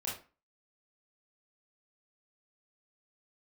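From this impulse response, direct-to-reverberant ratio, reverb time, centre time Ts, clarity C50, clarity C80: -6.0 dB, 0.35 s, 36 ms, 5.0 dB, 11.5 dB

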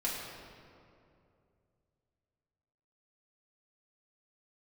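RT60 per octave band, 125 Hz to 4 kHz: 3.4 s, 2.8 s, 2.8 s, 2.4 s, 1.9 s, 1.4 s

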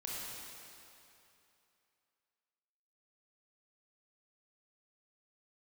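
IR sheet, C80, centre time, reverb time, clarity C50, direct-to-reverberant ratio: -2.0 dB, 184 ms, 2.8 s, -4.0 dB, -6.0 dB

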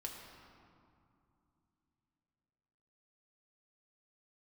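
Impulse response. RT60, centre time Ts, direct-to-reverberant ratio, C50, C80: 2.6 s, 82 ms, -1.0 dB, 3.0 dB, 4.0 dB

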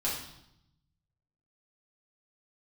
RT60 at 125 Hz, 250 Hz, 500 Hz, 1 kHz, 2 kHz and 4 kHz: 1.6 s, 1.1 s, 0.80 s, 0.80 s, 0.70 s, 0.75 s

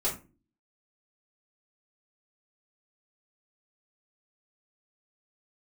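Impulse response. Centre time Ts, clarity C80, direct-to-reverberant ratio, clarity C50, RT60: 23 ms, 15.5 dB, -8.5 dB, 9.0 dB, 0.35 s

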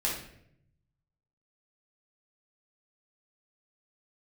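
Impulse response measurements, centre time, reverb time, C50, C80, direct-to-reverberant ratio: 39 ms, 0.70 s, 3.5 dB, 8.0 dB, -5.0 dB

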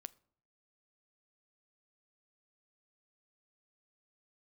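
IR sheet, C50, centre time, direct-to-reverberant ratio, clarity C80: 23.5 dB, 2 ms, 17.0 dB, 26.5 dB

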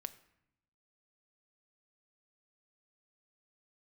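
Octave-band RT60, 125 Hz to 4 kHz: 1.3 s, 1.1 s, 0.75 s, 0.80 s, 0.80 s, 0.55 s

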